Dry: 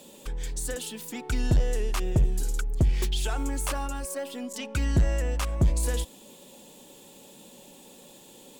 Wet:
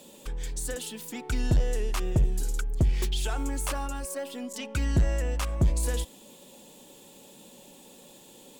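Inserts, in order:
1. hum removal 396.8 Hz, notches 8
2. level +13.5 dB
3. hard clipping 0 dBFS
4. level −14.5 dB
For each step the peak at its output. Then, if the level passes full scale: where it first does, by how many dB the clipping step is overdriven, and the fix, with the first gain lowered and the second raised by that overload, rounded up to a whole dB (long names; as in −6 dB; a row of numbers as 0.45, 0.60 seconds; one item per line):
−15.5, −2.0, −2.0, −16.5 dBFS
no step passes full scale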